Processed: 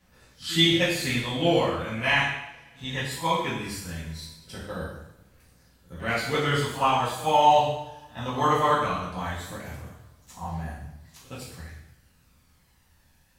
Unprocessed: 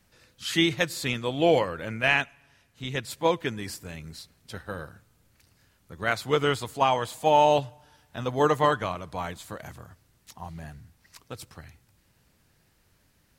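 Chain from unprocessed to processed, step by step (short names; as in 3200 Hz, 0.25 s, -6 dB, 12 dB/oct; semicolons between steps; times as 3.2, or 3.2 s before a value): pre-echo 67 ms -19 dB; phaser 0.19 Hz, delay 1.2 ms, feedback 39%; two-slope reverb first 0.78 s, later 2.9 s, from -28 dB, DRR -7.5 dB; gain -6.5 dB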